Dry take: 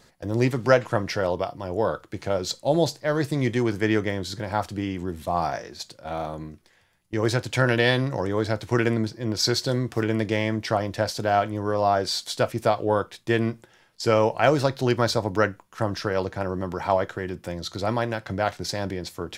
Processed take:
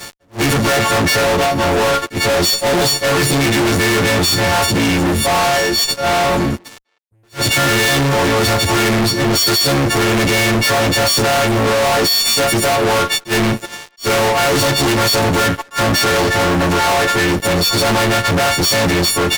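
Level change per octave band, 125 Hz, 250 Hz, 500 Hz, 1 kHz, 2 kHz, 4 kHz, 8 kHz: +8.5 dB, +9.5 dB, +8.0 dB, +11.0 dB, +14.0 dB, +17.0 dB, +19.0 dB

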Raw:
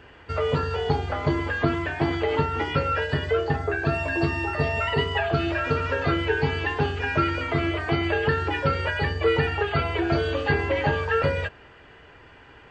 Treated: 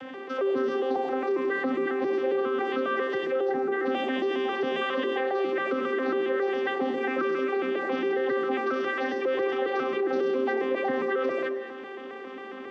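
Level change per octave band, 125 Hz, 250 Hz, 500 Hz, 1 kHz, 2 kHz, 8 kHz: under -25 dB, -2.0 dB, +0.5 dB, -3.5 dB, -5.0 dB, no reading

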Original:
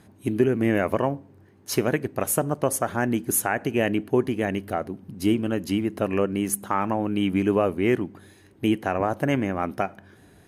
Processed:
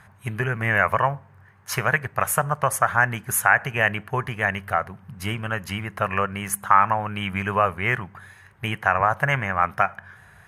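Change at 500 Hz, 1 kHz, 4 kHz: -4.0 dB, +8.0 dB, +2.5 dB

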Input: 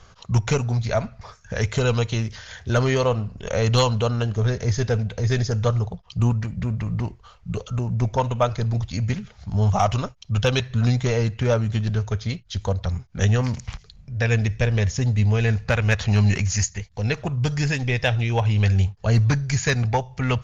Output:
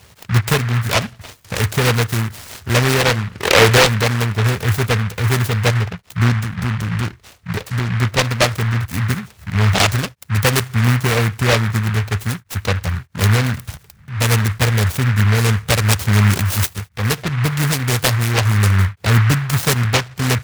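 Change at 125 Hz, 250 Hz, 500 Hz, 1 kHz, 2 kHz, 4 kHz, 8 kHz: +4.5 dB, +4.5 dB, +3.5 dB, +6.5 dB, +9.5 dB, +11.0 dB, no reading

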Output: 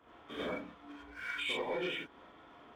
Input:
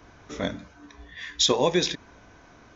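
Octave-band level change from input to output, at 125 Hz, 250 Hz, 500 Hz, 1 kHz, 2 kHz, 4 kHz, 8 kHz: -18.5 dB, -13.0 dB, -12.5 dB, -11.0 dB, -2.5 dB, -15.0 dB, no reading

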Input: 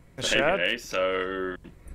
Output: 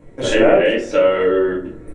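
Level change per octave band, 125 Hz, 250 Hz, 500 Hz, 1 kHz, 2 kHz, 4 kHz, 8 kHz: +8.5 dB, +14.0 dB, +14.0 dB, +7.0 dB, +4.0 dB, +1.0 dB, no reading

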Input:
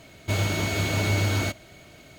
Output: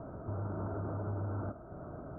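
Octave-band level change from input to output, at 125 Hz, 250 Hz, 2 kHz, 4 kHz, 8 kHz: -12.0 dB, -10.5 dB, -27.0 dB, under -40 dB, under -40 dB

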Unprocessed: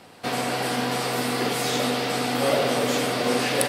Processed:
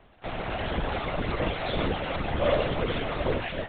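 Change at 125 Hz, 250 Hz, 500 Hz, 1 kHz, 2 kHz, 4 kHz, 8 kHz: +1.0 dB, -6.5 dB, -4.0 dB, -6.0 dB, -6.0 dB, -9.0 dB, under -40 dB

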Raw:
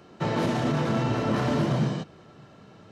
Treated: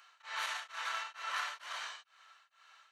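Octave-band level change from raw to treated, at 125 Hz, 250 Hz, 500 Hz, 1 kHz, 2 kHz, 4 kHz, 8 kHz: under -40 dB, under -40 dB, -29.0 dB, -9.5 dB, -3.0 dB, -3.0 dB, -3.0 dB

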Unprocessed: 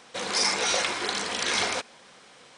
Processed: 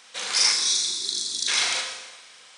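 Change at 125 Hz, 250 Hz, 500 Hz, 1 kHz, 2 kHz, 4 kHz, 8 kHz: under -10 dB, -11.5 dB, -11.0 dB, -6.0 dB, -1.0 dB, +5.0 dB, +6.0 dB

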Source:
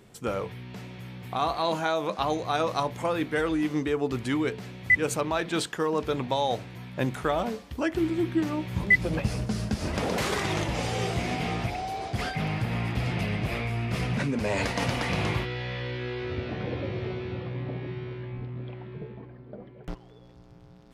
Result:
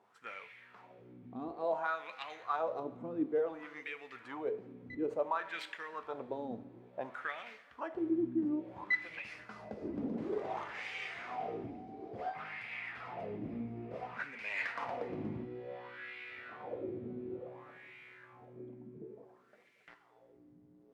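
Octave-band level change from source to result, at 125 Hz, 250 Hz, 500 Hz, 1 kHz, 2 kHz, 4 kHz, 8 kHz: -22.5 dB, -10.5 dB, -9.5 dB, -10.5 dB, -11.5 dB, -18.0 dB, under -25 dB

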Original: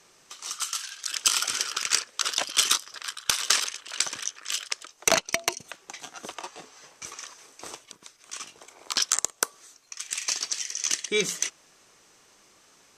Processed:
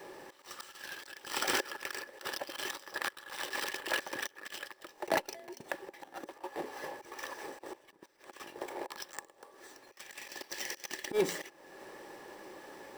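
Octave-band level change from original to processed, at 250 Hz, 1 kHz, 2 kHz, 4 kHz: -0.5 dB, -4.5 dB, -6.0 dB, -14.5 dB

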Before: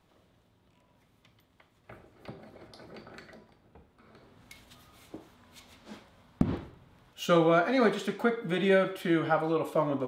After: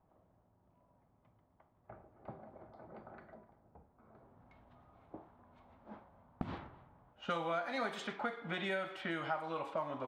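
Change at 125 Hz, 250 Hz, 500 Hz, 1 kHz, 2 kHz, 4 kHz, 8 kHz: -14.0 dB, -15.5 dB, -14.0 dB, -8.0 dB, -7.5 dB, -8.0 dB, -13.0 dB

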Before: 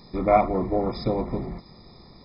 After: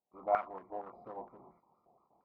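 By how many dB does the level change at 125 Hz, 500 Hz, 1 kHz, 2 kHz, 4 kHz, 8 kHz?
-33.0 dB, -15.5 dB, -12.0 dB, -11.5 dB, under -25 dB, no reading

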